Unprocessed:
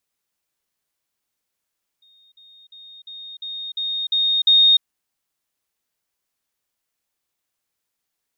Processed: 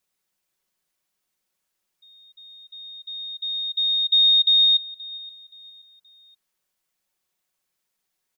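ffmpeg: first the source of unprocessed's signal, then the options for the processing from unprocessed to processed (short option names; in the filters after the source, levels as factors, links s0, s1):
-f lavfi -i "aevalsrc='pow(10,(-52+6*floor(t/0.35))/20)*sin(2*PI*3700*t)*clip(min(mod(t,0.35),0.3-mod(t,0.35))/0.005,0,1)':d=2.8:s=44100"
-af "aecho=1:1:5.4:0.52,alimiter=limit=0.237:level=0:latency=1:release=47,aecho=1:1:525|1050|1575:0.112|0.0381|0.013"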